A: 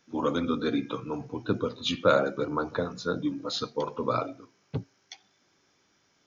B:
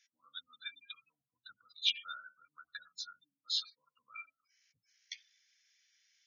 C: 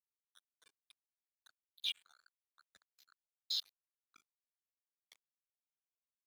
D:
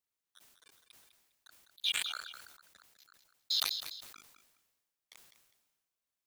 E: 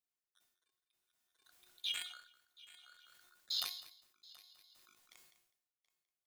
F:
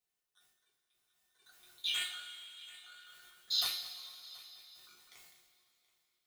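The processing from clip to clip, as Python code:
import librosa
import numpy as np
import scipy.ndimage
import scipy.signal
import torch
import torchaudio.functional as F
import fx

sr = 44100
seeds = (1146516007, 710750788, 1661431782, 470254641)

y1 = fx.spec_gate(x, sr, threshold_db=-20, keep='strong')
y1 = scipy.signal.sosfilt(scipy.signal.ellip(4, 1.0, 50, 1800.0, 'highpass', fs=sr, output='sos'), y1)
y1 = fx.dynamic_eq(y1, sr, hz=2400.0, q=1.5, threshold_db=-55.0, ratio=4.0, max_db=5)
y1 = y1 * 10.0 ** (-1.5 / 20.0)
y2 = fx.level_steps(y1, sr, step_db=19)
y2 = np.sign(y2) * np.maximum(np.abs(y2) - 10.0 ** (-53.5 / 20.0), 0.0)
y2 = y2 * 10.0 ** (3.5 / 20.0)
y3 = fx.echo_feedback(y2, sr, ms=203, feedback_pct=25, wet_db=-20.5)
y3 = fx.sustainer(y3, sr, db_per_s=44.0)
y3 = y3 * 10.0 ** (5.0 / 20.0)
y4 = fx.comb_fb(y3, sr, f0_hz=360.0, decay_s=0.5, harmonics='all', damping=0.0, mix_pct=80)
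y4 = y4 + 10.0 ** (-3.0 / 20.0) * np.pad(y4, (int(728 * sr / 1000.0), 0))[:len(y4)]
y4 = y4 * 10.0 ** (-20 * (0.5 - 0.5 * np.cos(2.0 * np.pi * 0.58 * np.arange(len(y4)) / sr)) / 20.0)
y4 = y4 * 10.0 ** (7.0 / 20.0)
y5 = fx.rev_double_slope(y4, sr, seeds[0], early_s=0.32, late_s=3.3, knee_db=-18, drr_db=-4.5)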